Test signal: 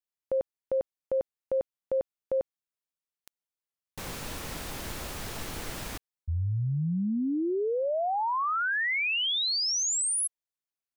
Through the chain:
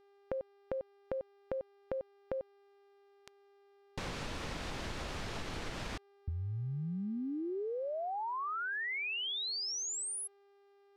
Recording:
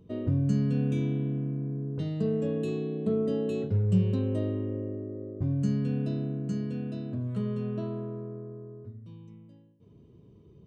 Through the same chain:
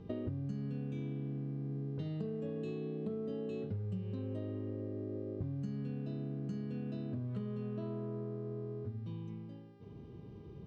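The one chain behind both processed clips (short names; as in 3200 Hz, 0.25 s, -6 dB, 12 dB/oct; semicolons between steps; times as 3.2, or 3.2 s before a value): LPF 5000 Hz 12 dB/oct; compressor 10:1, threshold -41 dBFS; buzz 400 Hz, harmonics 14, -70 dBFS -9 dB/oct; gain +4.5 dB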